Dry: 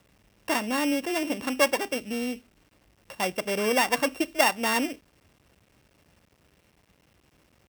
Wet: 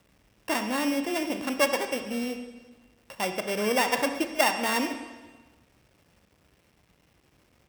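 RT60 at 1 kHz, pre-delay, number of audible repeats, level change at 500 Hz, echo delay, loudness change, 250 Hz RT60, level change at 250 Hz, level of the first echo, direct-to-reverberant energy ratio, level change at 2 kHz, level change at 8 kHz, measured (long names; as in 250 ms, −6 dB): 1.3 s, 23 ms, no echo audible, −1.0 dB, no echo audible, −1.0 dB, 1.4 s, −0.5 dB, no echo audible, 7.0 dB, −1.5 dB, −1.5 dB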